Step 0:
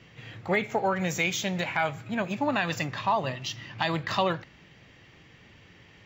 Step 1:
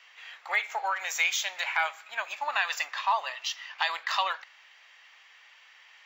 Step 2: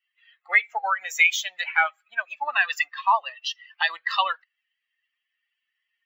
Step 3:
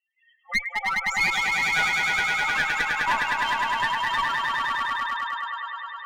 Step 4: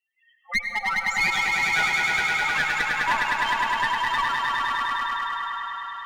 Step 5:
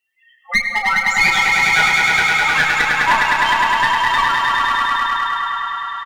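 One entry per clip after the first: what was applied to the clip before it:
high-pass 870 Hz 24 dB/octave; trim +2 dB
expander on every frequency bin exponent 2; FFT filter 190 Hz 0 dB, 2 kHz +12 dB, 5.1 kHz +3 dB
spectral contrast enhancement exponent 3.6; echo with a slow build-up 103 ms, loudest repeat 5, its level -4 dB; one-sided clip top -21 dBFS; trim -3 dB
echo that smears into a reverb 480 ms, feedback 51%, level -14 dB; reverberation RT60 2.1 s, pre-delay 77 ms, DRR 8.5 dB
doubling 32 ms -7.5 dB; trim +8 dB

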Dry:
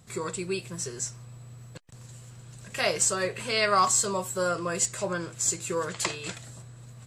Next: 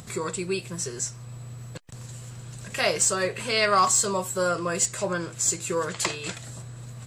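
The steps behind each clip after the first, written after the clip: in parallel at -0.5 dB: upward compressor, threshold -32 dBFS; on the sum: saturation -5.5 dBFS, distortion -26 dB; trim -3 dB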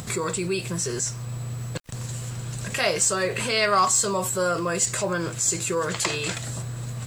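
in parallel at -3 dB: compressor with a negative ratio -35 dBFS, ratio -1; on the sum: bit crusher 9-bit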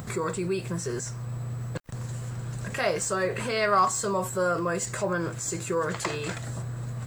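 high-order bell 5.7 kHz -8 dB 2.8 oct; trim -1.5 dB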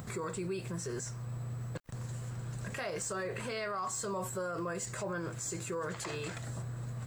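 peak limiter -23 dBFS, peak gain reduction 11 dB; trim -6 dB

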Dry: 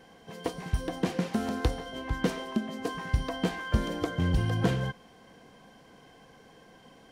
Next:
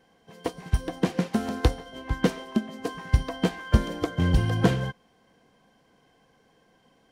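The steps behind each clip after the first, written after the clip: upward expansion 1.5:1, over -49 dBFS; trim +7 dB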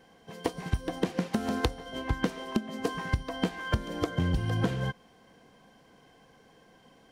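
compression 12:1, threshold -28 dBFS, peak gain reduction 17 dB; trim +4 dB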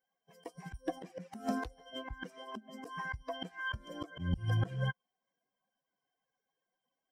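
expander on every frequency bin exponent 2; slow attack 158 ms; trim +4 dB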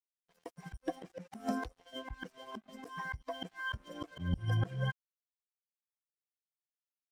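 crossover distortion -59 dBFS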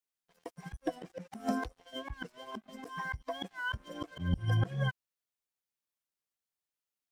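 warped record 45 rpm, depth 100 cents; trim +2.5 dB

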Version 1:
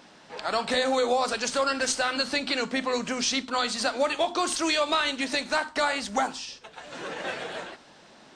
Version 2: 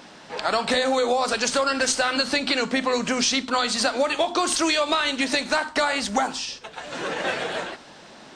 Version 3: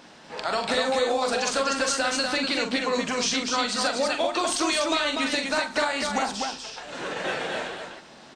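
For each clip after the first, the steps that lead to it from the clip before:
compression, threshold -25 dBFS, peak gain reduction 5.5 dB; trim +7 dB
loudspeakers at several distances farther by 15 m -6 dB, 84 m -4 dB; trim -4.5 dB

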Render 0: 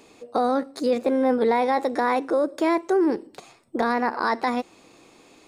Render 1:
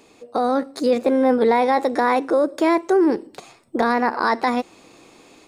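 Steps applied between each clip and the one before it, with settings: level rider gain up to 4 dB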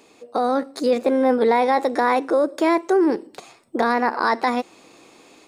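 bass shelf 110 Hz -11 dB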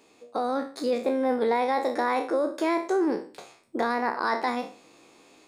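spectral sustain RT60 0.39 s; trim -7.5 dB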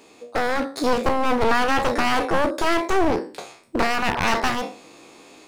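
one-sided wavefolder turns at -28.5 dBFS; trim +8.5 dB

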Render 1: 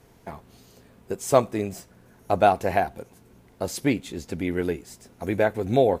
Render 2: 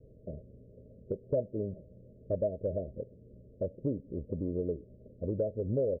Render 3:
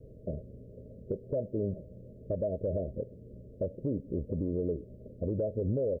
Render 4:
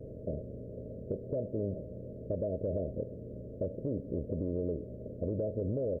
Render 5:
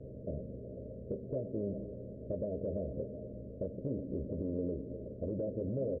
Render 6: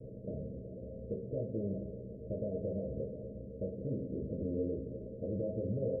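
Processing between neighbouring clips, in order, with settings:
Chebyshev low-pass 630 Hz, order 10; comb 1.7 ms, depth 36%; compression 2.5:1, threshold -32 dBFS, peak gain reduction 12 dB
peak limiter -29 dBFS, peak gain reduction 9 dB; trim +5.5 dB
spectral levelling over time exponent 0.6; trim -5 dB
distance through air 180 m; doubling 15 ms -7.5 dB; repeats whose band climbs or falls 124 ms, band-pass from 210 Hz, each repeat 0.7 oct, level -6.5 dB; trim -3 dB
rippled Chebyshev low-pass 660 Hz, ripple 6 dB; on a send at -4.5 dB: reverberation RT60 0.45 s, pre-delay 3 ms; on the sum: trim +1 dB

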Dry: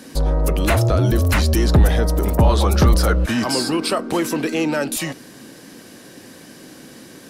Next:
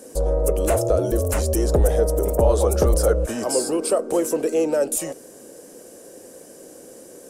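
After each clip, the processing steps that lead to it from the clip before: graphic EQ 125/250/500/1000/2000/4000/8000 Hz -10/-6/+12/-5/-8/-12/+9 dB; trim -3 dB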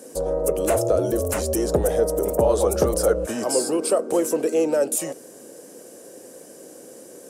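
high-pass 110 Hz 12 dB/octave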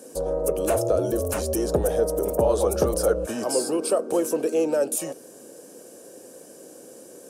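band-stop 2 kHz, Q 8.3; dynamic bell 7.5 kHz, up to -4 dB, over -47 dBFS, Q 5.6; trim -2 dB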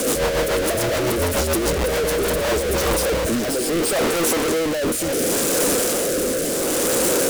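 one-bit comparator; rotary cabinet horn 7 Hz, later 0.7 Hz, at 2.01 s; trim +7 dB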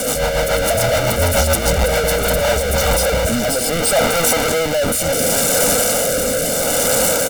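comb 1.4 ms, depth 87%; level rider gain up to 4.5 dB

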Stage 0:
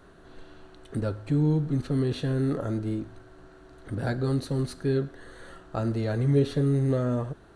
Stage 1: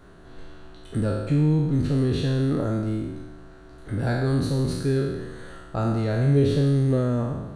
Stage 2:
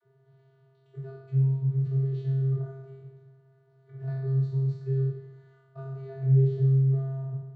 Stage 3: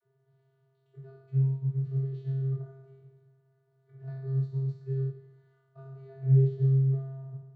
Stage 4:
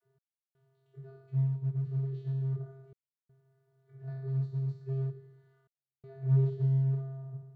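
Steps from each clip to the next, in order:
spectral sustain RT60 1.22 s; tone controls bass +4 dB, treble 0 dB
vocoder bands 32, square 134 Hz; trim -3 dB
upward expansion 1.5:1, over -33 dBFS
in parallel at -3 dB: hard clipper -31 dBFS, distortion -4 dB; on the sum: trance gate "x..xxxxxxxxxxxx" 82 bpm -60 dB; trim -5.5 dB

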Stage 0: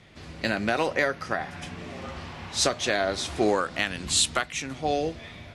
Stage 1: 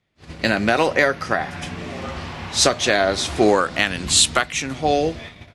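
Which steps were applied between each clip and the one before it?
gate -41 dBFS, range -27 dB; trim +7.5 dB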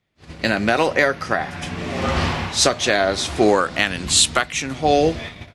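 level rider gain up to 17 dB; trim -1 dB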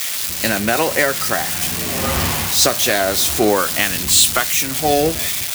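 zero-crossing glitches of -10.5 dBFS

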